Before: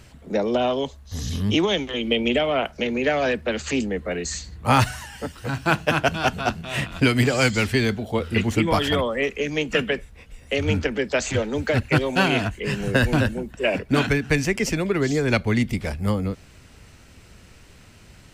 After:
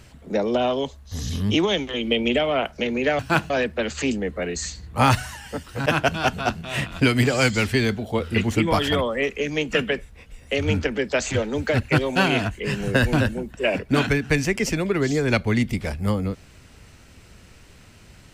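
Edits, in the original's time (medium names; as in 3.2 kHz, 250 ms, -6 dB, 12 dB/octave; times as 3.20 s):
5.55–5.86 s: move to 3.19 s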